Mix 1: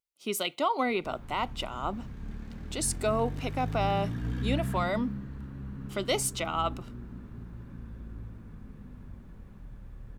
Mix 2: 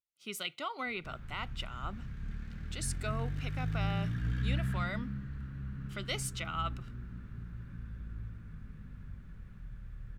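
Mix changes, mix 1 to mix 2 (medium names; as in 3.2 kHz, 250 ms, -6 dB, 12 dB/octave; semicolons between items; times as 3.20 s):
speech -4.0 dB; master: add FFT filter 160 Hz 0 dB, 250 Hz -9 dB, 970 Hz -10 dB, 1.4 kHz +2 dB, 12 kHz -6 dB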